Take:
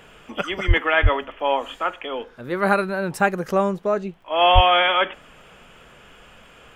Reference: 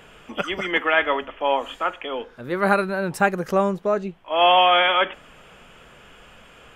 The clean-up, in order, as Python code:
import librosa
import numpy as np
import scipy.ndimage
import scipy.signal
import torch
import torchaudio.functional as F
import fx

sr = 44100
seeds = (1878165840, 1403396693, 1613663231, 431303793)

y = fx.fix_declick_ar(x, sr, threshold=6.5)
y = fx.highpass(y, sr, hz=140.0, slope=24, at=(0.67, 0.79), fade=0.02)
y = fx.highpass(y, sr, hz=140.0, slope=24, at=(1.02, 1.14), fade=0.02)
y = fx.highpass(y, sr, hz=140.0, slope=24, at=(4.54, 4.66), fade=0.02)